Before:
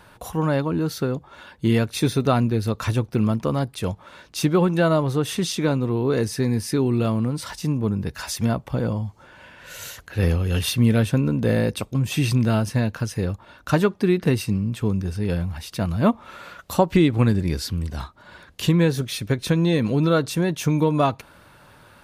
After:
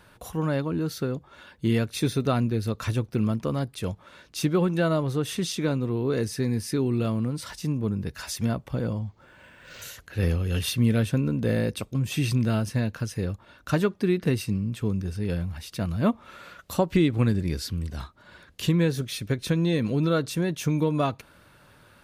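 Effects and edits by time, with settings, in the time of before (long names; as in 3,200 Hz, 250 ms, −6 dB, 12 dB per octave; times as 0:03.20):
0:08.99–0:09.82: linearly interpolated sample-rate reduction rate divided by 4×
whole clip: parametric band 870 Hz −4.5 dB 0.75 octaves; level −4 dB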